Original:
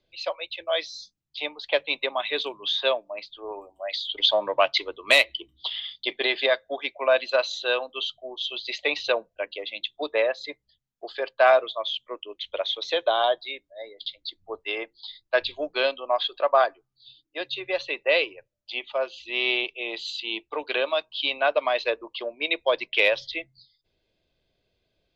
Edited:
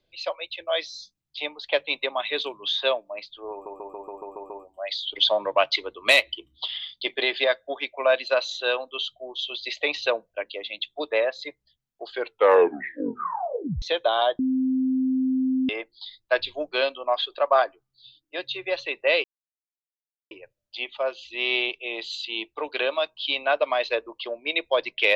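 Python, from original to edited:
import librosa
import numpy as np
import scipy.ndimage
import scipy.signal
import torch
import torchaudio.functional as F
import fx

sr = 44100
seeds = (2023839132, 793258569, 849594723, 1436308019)

y = fx.edit(x, sr, fx.stutter(start_s=3.52, slice_s=0.14, count=8),
    fx.tape_stop(start_s=11.09, length_s=1.75),
    fx.bleep(start_s=13.41, length_s=1.3, hz=260.0, db=-20.0),
    fx.insert_silence(at_s=18.26, length_s=1.07), tone=tone)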